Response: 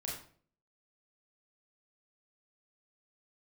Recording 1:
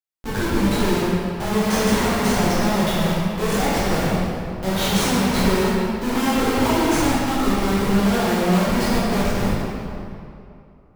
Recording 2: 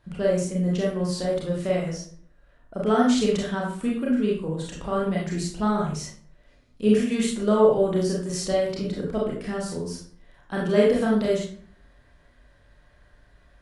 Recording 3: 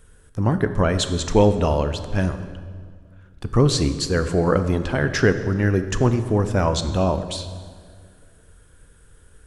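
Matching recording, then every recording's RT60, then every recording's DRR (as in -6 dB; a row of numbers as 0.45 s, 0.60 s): 2; 2.6 s, 0.50 s, 2.0 s; -11.0 dB, -4.0 dB, 9.0 dB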